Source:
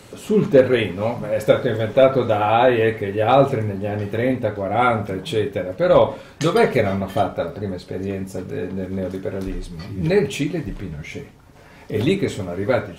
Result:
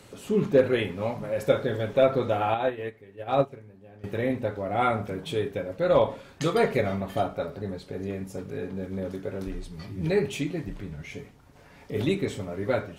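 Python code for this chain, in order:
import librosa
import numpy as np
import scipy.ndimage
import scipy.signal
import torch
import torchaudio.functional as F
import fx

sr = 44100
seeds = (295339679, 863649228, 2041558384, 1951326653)

y = fx.upward_expand(x, sr, threshold_db=-22.0, expansion=2.5, at=(2.54, 4.04))
y = F.gain(torch.from_numpy(y), -7.0).numpy()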